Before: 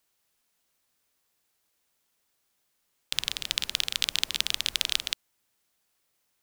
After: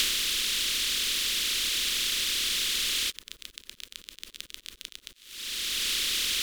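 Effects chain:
compressor on every frequency bin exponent 0.2
reverb reduction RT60 1.3 s
dynamic equaliser 3,900 Hz, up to −4 dB, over −38 dBFS, Q 0.75
in parallel at +2 dB: brickwall limiter −12.5 dBFS, peak gain reduction 11.5 dB
on the sum: phaser with its sweep stopped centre 320 Hz, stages 4
on a send: feedback echo with a high-pass in the loop 92 ms, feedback 79%, level −20 dB
on the sum: volume swells 757 ms
level +5 dB

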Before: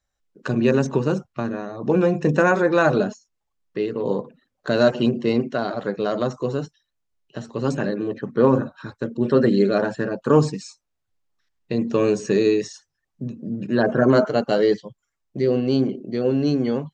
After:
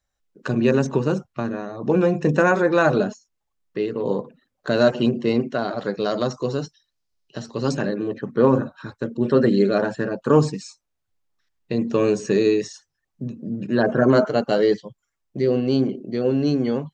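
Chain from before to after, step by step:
0:05.78–0:07.82: parametric band 4,900 Hz +9.5 dB 0.72 octaves

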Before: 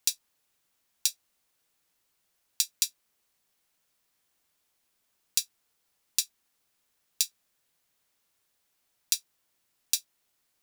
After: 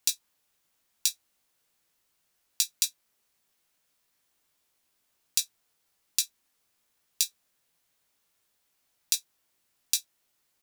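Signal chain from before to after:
double-tracking delay 18 ms −7 dB

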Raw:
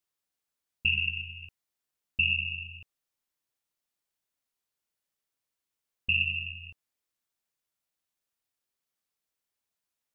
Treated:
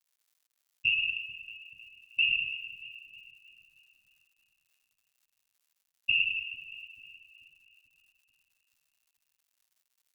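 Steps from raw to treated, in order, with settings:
in parallel at −8 dB: floating-point word with a short mantissa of 2 bits
on the sum: linear-prediction vocoder at 8 kHz pitch kept
noise gate −30 dBFS, range −16 dB
on a send: echo with a time of its own for lows and highs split 580 Hz, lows 439 ms, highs 314 ms, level −14 dB
on the sum: surface crackle 210 per second −60 dBFS
spectral tilt +3.5 dB per octave
level −7.5 dB

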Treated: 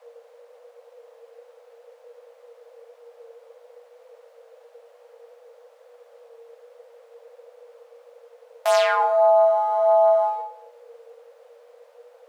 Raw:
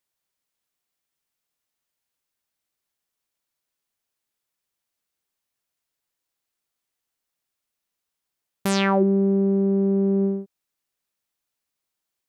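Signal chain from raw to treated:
parametric band 260 Hz +8.5 dB 0.43 octaves
leveller curve on the samples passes 1
chorus effect 1.5 Hz, delay 20 ms, depth 2.9 ms
background noise brown −49 dBFS
frequency shifter +460 Hz
on a send: convolution reverb RT60 0.80 s, pre-delay 33 ms, DRR 13.5 dB

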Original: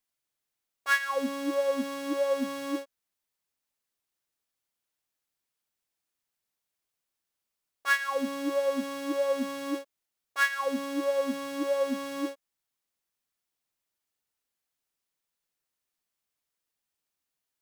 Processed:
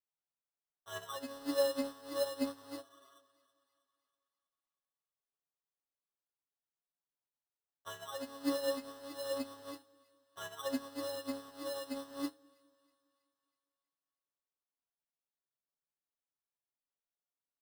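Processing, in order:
healed spectral selection 0:02.50–0:03.17, 990–2,000 Hz before
decimation without filtering 19×
low-shelf EQ 380 Hz −7 dB
mains-hum notches 60/120/180/240/300 Hz
comb filter 7.1 ms, depth 68%
brickwall limiter −22 dBFS, peak gain reduction 11 dB
flanger 0.29 Hz, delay 5.3 ms, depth 9.7 ms, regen +50%
echo with a time of its own for lows and highs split 880 Hz, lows 204 ms, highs 322 ms, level −14 dB
expander for the loud parts 2.5 to 1, over −43 dBFS
level +3.5 dB

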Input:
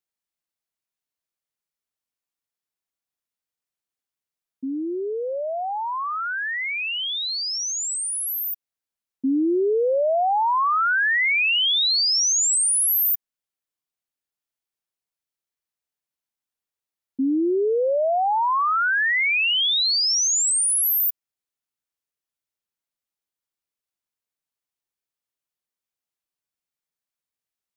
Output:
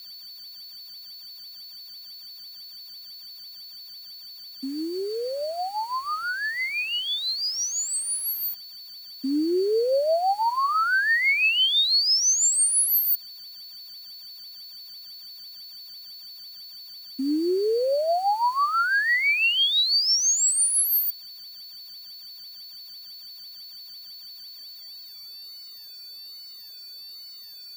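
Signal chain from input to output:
high-pass filter 320 Hz 6 dB per octave
steady tone 4,500 Hz −39 dBFS
rotating-speaker cabinet horn 6 Hz, later 1.2 Hz, at 0:24.35
bit reduction 8 bits
level +1.5 dB

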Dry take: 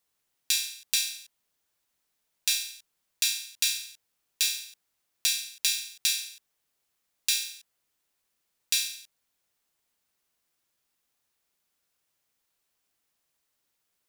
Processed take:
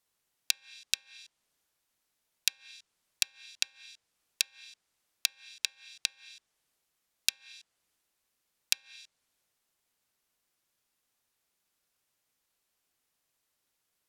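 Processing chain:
transient designer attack +6 dB, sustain +2 dB
treble cut that deepens with the level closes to 560 Hz, closed at −20.5 dBFS
level −1 dB

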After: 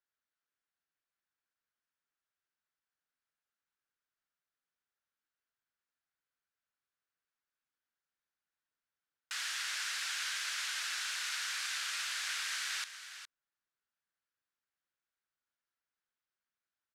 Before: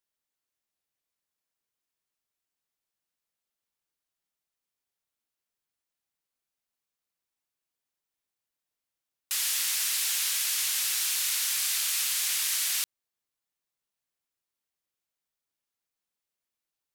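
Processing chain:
low-pass filter 5,700 Hz 12 dB per octave
parametric band 1,500 Hz +11.5 dB 0.75 octaves
on a send: single-tap delay 412 ms −11 dB
on the sum: level −7 dB

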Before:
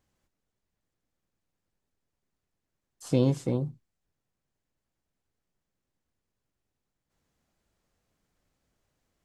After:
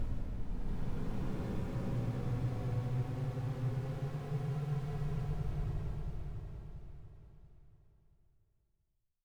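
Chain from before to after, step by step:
high-pass filter 150 Hz 12 dB per octave
parametric band 1,100 Hz −10.5 dB 1.9 octaves
comb filter 1.6 ms, depth 49%
delay with a high-pass on its return 237 ms, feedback 53%, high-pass 3,500 Hz, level −10.5 dB
comparator with hysteresis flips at −39 dBFS
extreme stretch with random phases 20×, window 0.10 s, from 0:03.42
spectral tilt −2.5 dB per octave
on a send: repeating echo 683 ms, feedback 31%, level −6 dB
on the sum: level −3 dB

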